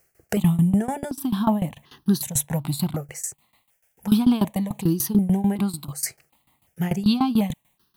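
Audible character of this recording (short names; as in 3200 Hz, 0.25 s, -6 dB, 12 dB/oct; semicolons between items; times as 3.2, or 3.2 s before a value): a quantiser's noise floor 12-bit, dither triangular; tremolo saw down 6.8 Hz, depth 90%; notches that jump at a steady rate 2.7 Hz 990–2200 Hz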